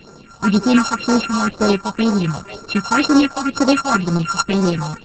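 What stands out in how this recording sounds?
a buzz of ramps at a fixed pitch in blocks of 32 samples; phasing stages 4, 2 Hz, lowest notch 350–3000 Hz; Opus

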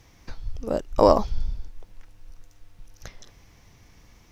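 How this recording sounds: noise floor -55 dBFS; spectral tilt -6.0 dB/octave

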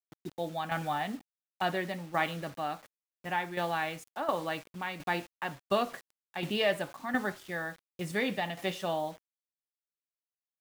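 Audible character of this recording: a quantiser's noise floor 8-bit, dither none; tremolo saw down 1.4 Hz, depth 60%

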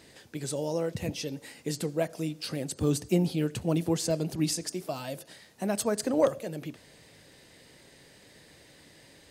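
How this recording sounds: noise floor -56 dBFS; spectral tilt -5.0 dB/octave

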